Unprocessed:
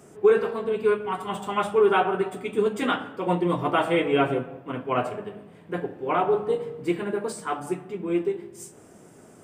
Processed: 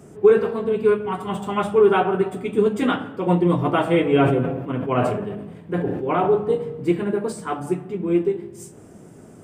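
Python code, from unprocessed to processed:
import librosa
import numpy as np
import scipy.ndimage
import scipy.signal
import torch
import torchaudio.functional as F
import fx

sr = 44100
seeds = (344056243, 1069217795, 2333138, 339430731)

y = fx.low_shelf(x, sr, hz=350.0, db=10.5)
y = fx.sustainer(y, sr, db_per_s=45.0, at=(4.15, 6.3))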